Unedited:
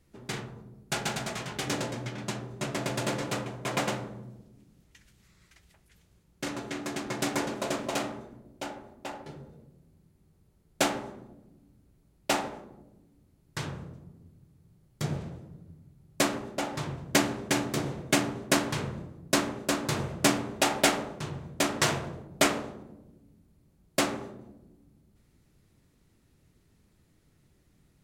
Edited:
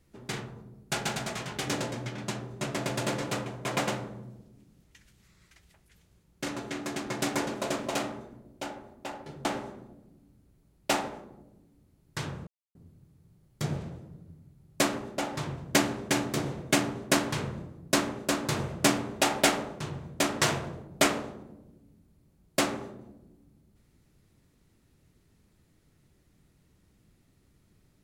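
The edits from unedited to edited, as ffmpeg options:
-filter_complex "[0:a]asplit=4[s0][s1][s2][s3];[s0]atrim=end=9.452[s4];[s1]atrim=start=10.848:end=13.87,asetpts=PTS-STARTPTS,afade=t=out:st=3.018:d=0.004:c=hsin[s5];[s2]atrim=start=13.87:end=14.15,asetpts=PTS-STARTPTS,volume=0[s6];[s3]atrim=start=14.15,asetpts=PTS-STARTPTS,afade=t=in:d=0.004:c=hsin[s7];[s5][s6][s7]concat=n=3:v=0:a=1[s8];[s4][s8]acrossfade=d=0.004:c1=hsin:c2=hsin"

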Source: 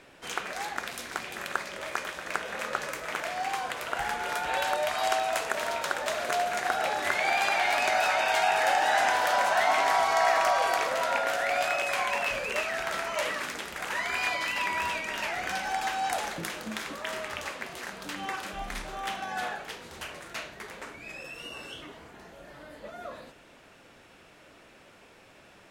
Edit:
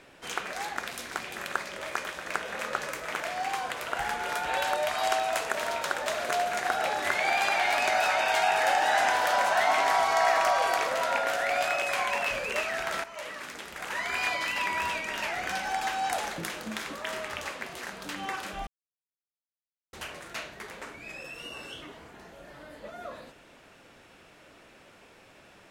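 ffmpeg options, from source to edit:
-filter_complex "[0:a]asplit=4[s0][s1][s2][s3];[s0]atrim=end=13.04,asetpts=PTS-STARTPTS,afade=t=out:st=13.036:d=0.004:c=hsin:silence=0.223872[s4];[s1]atrim=start=13.04:end=18.67,asetpts=PTS-STARTPTS,afade=t=in:d=1.16:silence=0.223872,afade=t=out:st=5.626:d=0.004:c=hsin[s5];[s2]atrim=start=18.67:end=19.93,asetpts=PTS-STARTPTS,volume=0[s6];[s3]atrim=start=19.93,asetpts=PTS-STARTPTS,afade=t=in:d=0.004:c=hsin[s7];[s4][s5][s6][s7]concat=n=4:v=0:a=1"

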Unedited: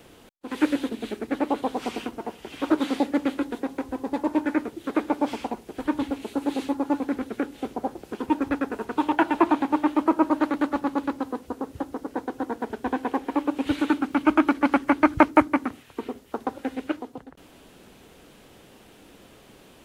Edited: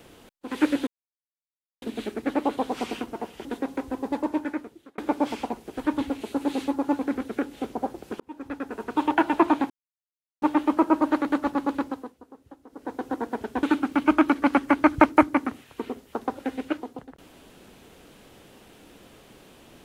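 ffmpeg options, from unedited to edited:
-filter_complex "[0:a]asplit=9[s0][s1][s2][s3][s4][s5][s6][s7][s8];[s0]atrim=end=0.87,asetpts=PTS-STARTPTS,afade=t=out:st=0.866:d=0.004:c=hsin,apad=pad_dur=0.95[s9];[s1]atrim=start=0.87:end=2.502,asetpts=PTS-STARTPTS,afade=t=in:d=0.004:c=hsin[s10];[s2]atrim=start=3.458:end=4.99,asetpts=PTS-STARTPTS,afade=t=out:st=0.642:d=0.89[s11];[s3]atrim=start=4.99:end=8.21,asetpts=PTS-STARTPTS,afade=t=in:d=0.004:c=hsin,afade=t=out:st=3.216:d=0.004:c=hsin[s12];[s4]atrim=start=8.21:end=9.71,asetpts=PTS-STARTPTS,afade=t=in:d=0.83,afade=t=out:st=1.496:d=0.004:c=hsin,apad=pad_dur=0.72[s13];[s5]atrim=start=9.71:end=11.45,asetpts=PTS-STARTPTS,afade=t=in:d=0.004:c=hsin,afade=t=out:st=1.39:d=0.35:silence=0.149624[s14];[s6]atrim=start=11.45:end=11.97,asetpts=PTS-STARTPTS,volume=0.15[s15];[s7]atrim=start=11.97:end=12.922,asetpts=PTS-STARTPTS,afade=t=in:d=0.35:silence=0.149624[s16];[s8]atrim=start=13.818[s17];[s9][s10]concat=n=2:v=0:a=1[s18];[s11][s12][s13][s14][s15][s16]concat=n=6:v=0:a=1[s19];[s18][s19]acrossfade=d=0.004:c1=hsin:c2=hsin[s20];[s20][s17]acrossfade=d=0.004:c1=hsin:c2=hsin"

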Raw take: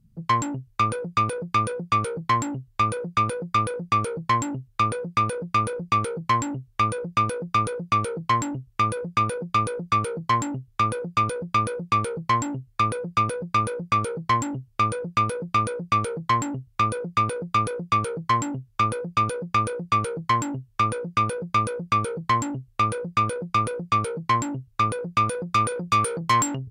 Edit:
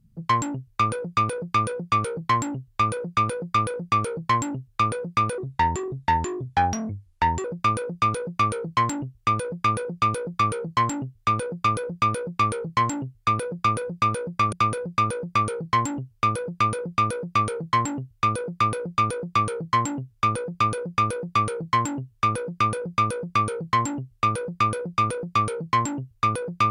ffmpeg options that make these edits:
-filter_complex "[0:a]asplit=4[s0][s1][s2][s3];[s0]atrim=end=5.384[s4];[s1]atrim=start=5.38:end=6.97,asetpts=PTS-STARTPTS,asetrate=33957,aresample=44100[s5];[s2]atrim=start=6.966:end=14.052[s6];[s3]atrim=start=13.088[s7];[s4][s5]acrossfade=d=0.004:c1=hsin:c2=hsin[s8];[s8][s6]acrossfade=d=0.004:c1=hsin:c2=hsin[s9];[s9][s7]acrossfade=d=0.004:c1=hsin:c2=hsin"

